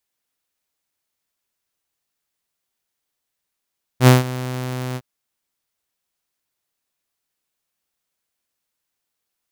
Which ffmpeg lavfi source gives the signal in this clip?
-f lavfi -i "aevalsrc='0.708*(2*mod(127*t,1)-1)':d=1.009:s=44100,afade=t=in:d=0.072,afade=t=out:st=0.072:d=0.159:silence=0.119,afade=t=out:st=0.96:d=0.049"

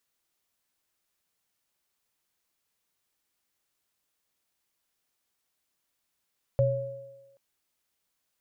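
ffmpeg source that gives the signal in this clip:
-f lavfi -i "aevalsrc='0.0891*pow(10,-3*t/0.82)*sin(2*PI*126*t)+0.0944*pow(10,-3*t/1.21)*sin(2*PI*551*t)':d=0.78:s=44100"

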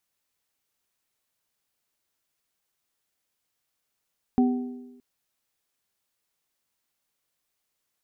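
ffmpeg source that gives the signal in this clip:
-f lavfi -i "aevalsrc='0.168*pow(10,-3*t/1.04)*sin(2*PI*249*t)+0.0422*pow(10,-3*t/1.2)*sin(2*PI*398*t)+0.0422*pow(10,-3*t/0.68)*sin(2*PI*755*t)':d=0.62:s=44100"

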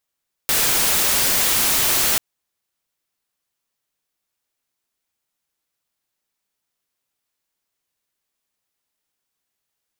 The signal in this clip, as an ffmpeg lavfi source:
-f lavfi -i "anoisesrc=c=white:a=0.218:d=1.69:r=44100:seed=1"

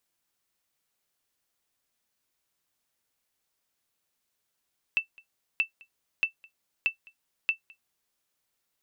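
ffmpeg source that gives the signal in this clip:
-f lavfi -i "aevalsrc='0.168*(sin(2*PI*2660*mod(t,0.63))*exp(-6.91*mod(t,0.63)/0.11)+0.0473*sin(2*PI*2660*max(mod(t,0.63)-0.21,0))*exp(-6.91*max(mod(t,0.63)-0.21,0)/0.11))':d=3.15:s=44100"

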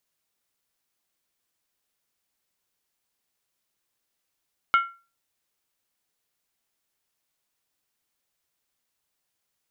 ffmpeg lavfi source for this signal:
-f lavfi -i "aevalsrc='0.224*pow(10,-3*t/0.33)*sin(2*PI*1370*t)+0.0891*pow(10,-3*t/0.261)*sin(2*PI*2183.8*t)+0.0355*pow(10,-3*t/0.226)*sin(2*PI*2926.3*t)+0.0141*pow(10,-3*t/0.218)*sin(2*PI*3145.5*t)+0.00562*pow(10,-3*t/0.203)*sin(2*PI*3634.6*t)':d=0.63:s=44100"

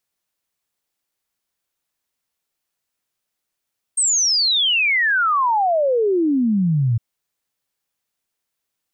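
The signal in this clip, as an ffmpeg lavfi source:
-f lavfi -i "aevalsrc='0.188*clip(min(t,3.01-t)/0.01,0,1)*sin(2*PI*8600*3.01/log(110/8600)*(exp(log(110/8600)*t/3.01)-1))':d=3.01:s=44100"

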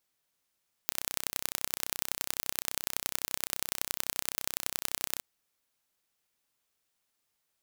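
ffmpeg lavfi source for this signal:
-f lavfi -i "aevalsrc='0.841*eq(mod(n,1387),0)*(0.5+0.5*eq(mod(n,4161),0))':d=4.33:s=44100"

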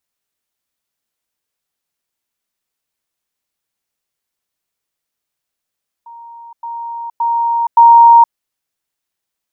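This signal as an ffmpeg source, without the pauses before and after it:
-f lavfi -i "aevalsrc='pow(10,(-32+10*floor(t/0.57))/20)*sin(2*PI*933*t)*clip(min(mod(t,0.57),0.47-mod(t,0.57))/0.005,0,1)':d=2.28:s=44100"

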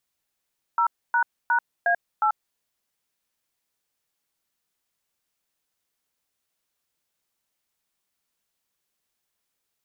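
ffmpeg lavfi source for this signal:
-f lavfi -i "aevalsrc='0.0944*clip(min(mod(t,0.36),0.088-mod(t,0.36))/0.002,0,1)*(eq(floor(t/0.36),0)*(sin(2*PI*941*mod(t,0.36))+sin(2*PI*1336*mod(t,0.36)))+eq(floor(t/0.36),1)*(sin(2*PI*941*mod(t,0.36))+sin(2*PI*1477*mod(t,0.36)))+eq(floor(t/0.36),2)*(sin(2*PI*941*mod(t,0.36))+sin(2*PI*1477*mod(t,0.36)))+eq(floor(t/0.36),3)*(sin(2*PI*697*mod(t,0.36))+sin(2*PI*1633*mod(t,0.36)))+eq(floor(t/0.36),4)*(sin(2*PI*852*mod(t,0.36))+sin(2*PI*1336*mod(t,0.36))))':d=1.8:s=44100"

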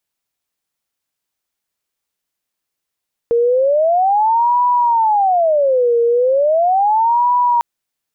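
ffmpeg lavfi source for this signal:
-f lavfi -i "aevalsrc='0.299*sin(2*PI*(724*t-256/(2*PI*0.37)*sin(2*PI*0.37*t)))':d=4.3:s=44100"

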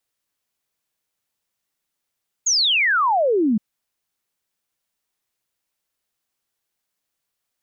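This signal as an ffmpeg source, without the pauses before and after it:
-f lavfi -i "aevalsrc='0.178*clip(min(t,1.12-t)/0.01,0,1)*sin(2*PI*6900*1.12/log(200/6900)*(exp(log(200/6900)*t/1.12)-1))':d=1.12:s=44100"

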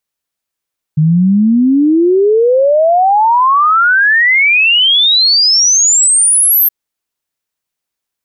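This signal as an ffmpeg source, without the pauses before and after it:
-f lavfi -i "aevalsrc='0.501*clip(min(t,5.72-t)/0.01,0,1)*sin(2*PI*150*5.72/log(13000/150)*(exp(log(13000/150)*t/5.72)-1))':d=5.72:s=44100"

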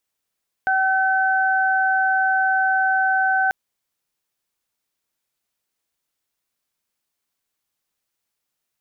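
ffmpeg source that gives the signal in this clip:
-f lavfi -i "aevalsrc='0.112*sin(2*PI*763*t)+0.119*sin(2*PI*1526*t)':d=2.84:s=44100"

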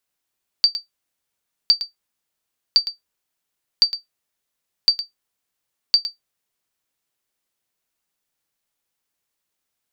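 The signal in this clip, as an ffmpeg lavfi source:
-f lavfi -i "aevalsrc='0.596*(sin(2*PI*4640*mod(t,1.06))*exp(-6.91*mod(t,1.06)/0.14)+0.237*sin(2*PI*4640*max(mod(t,1.06)-0.11,0))*exp(-6.91*max(mod(t,1.06)-0.11,0)/0.14))':d=6.36:s=44100"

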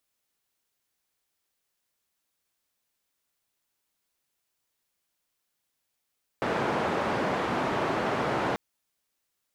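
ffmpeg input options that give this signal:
-f lavfi -i "anoisesrc=c=white:d=2.14:r=44100:seed=1,highpass=f=130,lowpass=f=1000,volume=-9.6dB"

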